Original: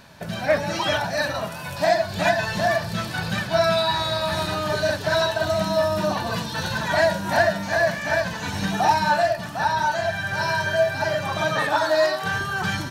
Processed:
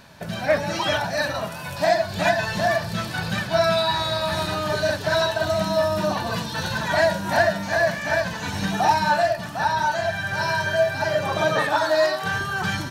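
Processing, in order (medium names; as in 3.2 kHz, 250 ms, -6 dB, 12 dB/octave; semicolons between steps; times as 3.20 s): 11.15–11.62 s: peaking EQ 450 Hz +8 dB 0.89 oct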